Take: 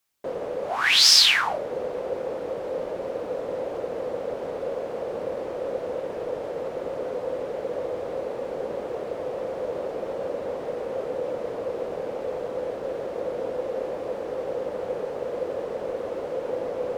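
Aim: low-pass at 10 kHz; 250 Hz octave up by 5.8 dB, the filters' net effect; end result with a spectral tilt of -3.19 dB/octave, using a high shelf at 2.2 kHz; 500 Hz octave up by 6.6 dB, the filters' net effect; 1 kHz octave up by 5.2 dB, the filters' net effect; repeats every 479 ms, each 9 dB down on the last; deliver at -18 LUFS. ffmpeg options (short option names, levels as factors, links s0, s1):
-af "lowpass=10000,equalizer=f=250:t=o:g=5.5,equalizer=f=500:t=o:g=5,equalizer=f=1000:t=o:g=6,highshelf=f=2200:g=-7,aecho=1:1:479|958|1437|1916:0.355|0.124|0.0435|0.0152,volume=1.88"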